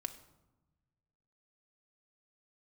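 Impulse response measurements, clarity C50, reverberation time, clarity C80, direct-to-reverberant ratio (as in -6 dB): 13.0 dB, 1.0 s, 15.0 dB, 5.0 dB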